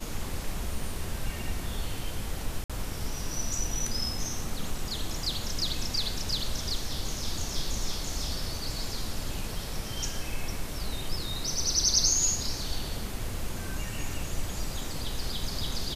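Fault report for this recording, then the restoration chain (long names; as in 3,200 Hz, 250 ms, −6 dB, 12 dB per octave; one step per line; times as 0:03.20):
0:00.82: drop-out 2.1 ms
0:02.64–0:02.70: drop-out 56 ms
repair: repair the gap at 0:00.82, 2.1 ms
repair the gap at 0:02.64, 56 ms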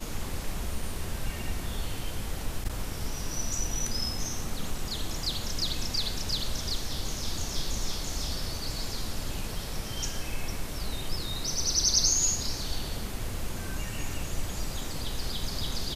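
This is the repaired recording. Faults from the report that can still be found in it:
none of them is left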